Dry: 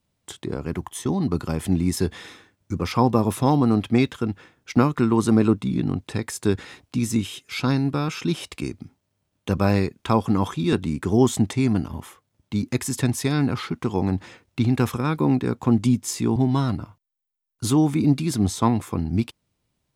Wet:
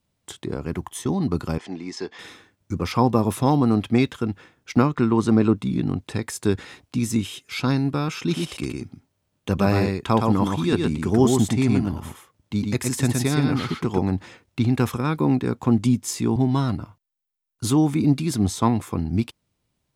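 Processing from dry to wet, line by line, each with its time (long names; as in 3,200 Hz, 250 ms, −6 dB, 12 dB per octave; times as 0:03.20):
0:01.58–0:02.19: loudspeaker in its box 440–5,600 Hz, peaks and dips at 570 Hz −6 dB, 1,400 Hz −5 dB, 2,700 Hz −3 dB, 3,800 Hz −6 dB
0:04.82–0:05.55: parametric band 12,000 Hz −13 dB 0.92 octaves
0:08.19–0:13.99: single-tap delay 117 ms −4 dB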